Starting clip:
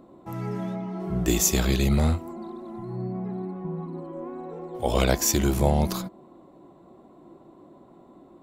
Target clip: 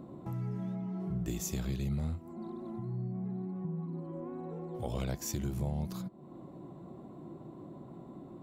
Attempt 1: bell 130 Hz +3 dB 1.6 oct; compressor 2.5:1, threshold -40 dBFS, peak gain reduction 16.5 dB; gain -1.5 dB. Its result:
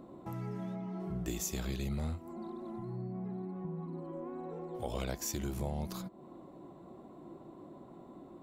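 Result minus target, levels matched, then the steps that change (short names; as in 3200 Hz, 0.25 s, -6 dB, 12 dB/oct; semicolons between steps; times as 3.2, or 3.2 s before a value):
125 Hz band -3.0 dB
change: bell 130 Hz +13 dB 1.6 oct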